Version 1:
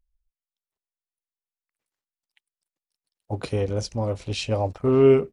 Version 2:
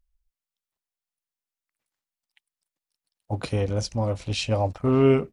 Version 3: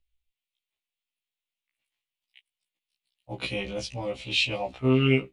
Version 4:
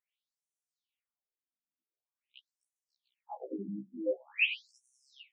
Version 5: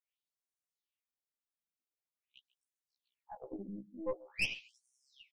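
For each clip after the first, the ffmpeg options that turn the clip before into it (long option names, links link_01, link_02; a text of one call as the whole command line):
ffmpeg -i in.wav -af "equalizer=frequency=410:width_type=o:width=0.5:gain=-6,volume=1.5dB" out.wav
ffmpeg -i in.wav -filter_complex "[0:a]acrossover=split=300|3300[link_01][link_02][link_03];[link_02]aexciter=amount=10.1:drive=4.6:freq=2300[link_04];[link_01][link_04][link_03]amix=inputs=3:normalize=0,afftfilt=real='re*1.73*eq(mod(b,3),0)':imag='im*1.73*eq(mod(b,3),0)':win_size=2048:overlap=0.75,volume=-2.5dB" out.wav
ffmpeg -i in.wav -af "afftfilt=real='re*between(b*sr/1024,220*pow(8000/220,0.5+0.5*sin(2*PI*0.46*pts/sr))/1.41,220*pow(8000/220,0.5+0.5*sin(2*PI*0.46*pts/sr))*1.41)':imag='im*between(b*sr/1024,220*pow(8000/220,0.5+0.5*sin(2*PI*0.46*pts/sr))/1.41,220*pow(8000/220,0.5+0.5*sin(2*PI*0.46*pts/sr))*1.41)':win_size=1024:overlap=0.75,volume=1.5dB" out.wav
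ffmpeg -i in.wav -af "aecho=1:1:142:0.1,aeval=exprs='(tanh(17.8*val(0)+0.75)-tanh(0.75))/17.8':channel_layout=same,volume=-1dB" out.wav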